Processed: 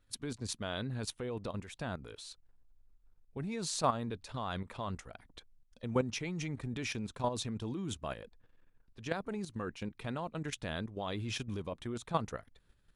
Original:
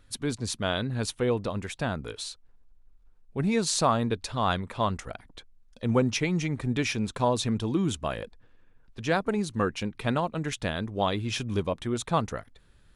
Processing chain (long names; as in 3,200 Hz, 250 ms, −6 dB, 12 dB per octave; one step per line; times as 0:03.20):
output level in coarse steps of 11 dB
level −4.5 dB